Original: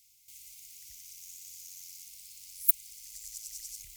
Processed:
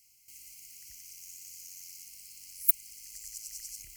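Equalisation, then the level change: Butterworth band-stop 3.6 kHz, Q 3.4; peaking EQ 330 Hz +10.5 dB 0.76 oct; peaking EQ 760 Hz +12.5 dB 1.7 oct; 0.0 dB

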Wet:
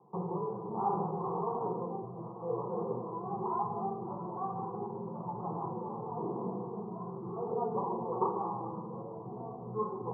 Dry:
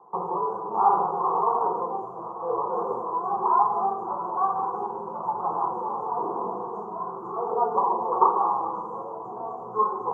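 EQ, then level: band-pass filter 130 Hz, Q 1.5; distance through air 480 m; +9.0 dB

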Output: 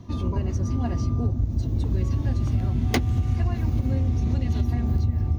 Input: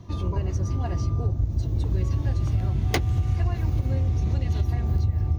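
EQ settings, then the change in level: peaking EQ 240 Hz +15 dB 0.23 oct; 0.0 dB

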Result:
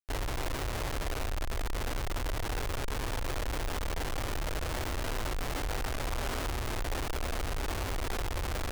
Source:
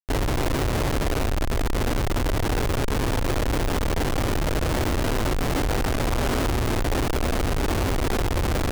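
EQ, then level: peaking EQ 210 Hz -8.5 dB 2.5 oct; -7.5 dB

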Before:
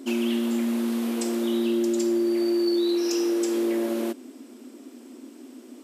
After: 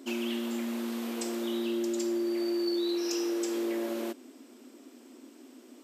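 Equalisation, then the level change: bass shelf 230 Hz -11 dB; peaking EQ 10 kHz -6.5 dB 0.29 oct; -3.5 dB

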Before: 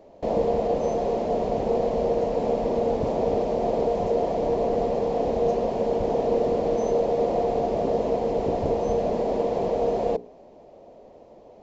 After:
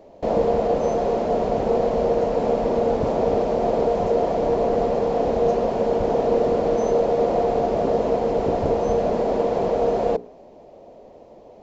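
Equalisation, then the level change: dynamic bell 1.4 kHz, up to +7 dB, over -49 dBFS, Q 2.4; +3.0 dB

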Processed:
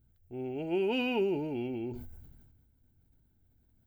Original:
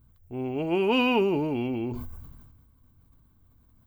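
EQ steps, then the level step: Butterworth band-stop 1.1 kHz, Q 2.9; peaking EQ 370 Hz +5 dB 0.21 oct; -8.0 dB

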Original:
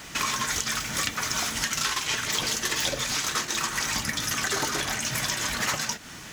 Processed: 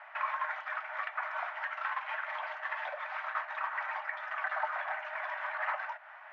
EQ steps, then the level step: rippled Chebyshev high-pass 600 Hz, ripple 3 dB; low-pass 1.7 kHz 24 dB/octave; 0.0 dB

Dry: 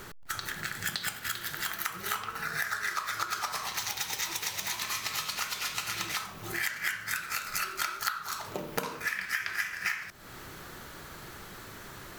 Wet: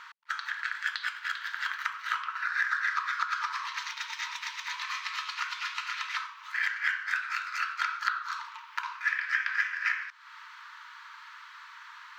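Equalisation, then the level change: dynamic bell 1.6 kHz, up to +5 dB, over -45 dBFS, Q 5; brick-wall FIR high-pass 880 Hz; distance through air 210 m; +3.0 dB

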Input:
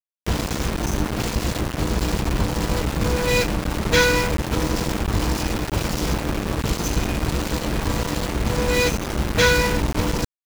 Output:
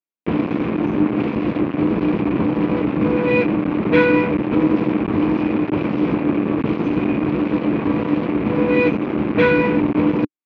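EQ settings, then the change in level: cabinet simulation 160–2900 Hz, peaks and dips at 300 Hz +5 dB, 1.1 kHz +5 dB, 2.4 kHz +8 dB; peaking EQ 290 Hz +10 dB 2.5 oct; bass shelf 380 Hz +5 dB; -5.5 dB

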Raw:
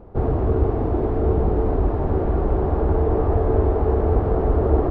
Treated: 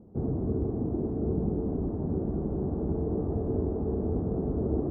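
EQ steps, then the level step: band-pass filter 200 Hz, Q 1.8; distance through air 310 m; 0.0 dB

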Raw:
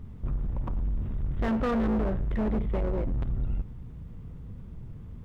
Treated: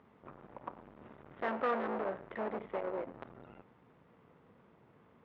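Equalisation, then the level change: band-pass 540–2400 Hz; 0.0 dB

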